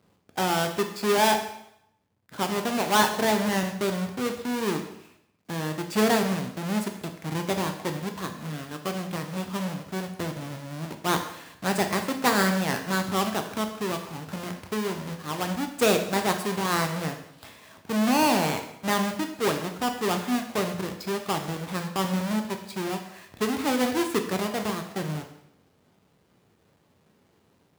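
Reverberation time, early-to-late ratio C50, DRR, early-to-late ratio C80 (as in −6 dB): 0.75 s, 8.5 dB, 5.0 dB, 11.0 dB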